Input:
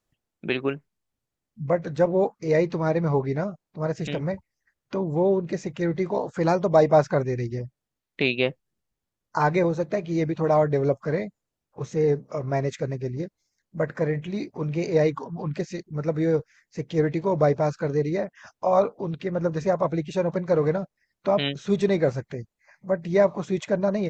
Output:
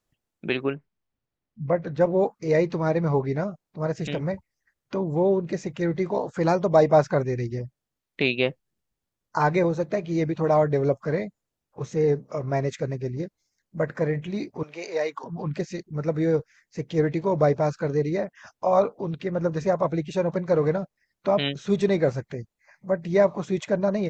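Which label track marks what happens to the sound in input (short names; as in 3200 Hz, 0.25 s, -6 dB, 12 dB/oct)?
0.630000	2.010000	air absorption 140 m
14.630000	15.240000	HPF 640 Hz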